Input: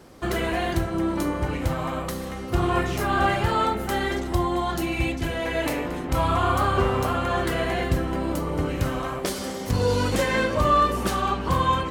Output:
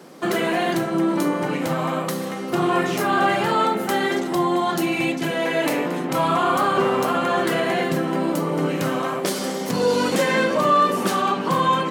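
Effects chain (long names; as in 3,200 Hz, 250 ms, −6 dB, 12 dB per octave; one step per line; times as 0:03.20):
Chebyshev high-pass filter 160 Hz, order 4
in parallel at −0.5 dB: brickwall limiter −19 dBFS, peak gain reduction 8.5 dB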